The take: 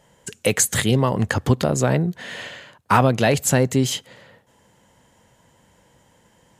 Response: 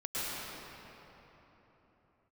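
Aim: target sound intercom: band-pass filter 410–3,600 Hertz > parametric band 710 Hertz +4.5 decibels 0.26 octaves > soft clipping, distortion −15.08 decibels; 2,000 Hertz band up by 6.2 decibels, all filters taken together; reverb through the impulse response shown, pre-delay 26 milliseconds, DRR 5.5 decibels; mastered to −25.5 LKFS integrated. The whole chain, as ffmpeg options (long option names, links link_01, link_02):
-filter_complex "[0:a]equalizer=frequency=2000:width_type=o:gain=8,asplit=2[link_01][link_02];[1:a]atrim=start_sample=2205,adelay=26[link_03];[link_02][link_03]afir=irnorm=-1:irlink=0,volume=-12dB[link_04];[link_01][link_04]amix=inputs=2:normalize=0,highpass=410,lowpass=3600,equalizer=frequency=710:width_type=o:width=0.26:gain=4.5,asoftclip=threshold=-8.5dB,volume=-3.5dB"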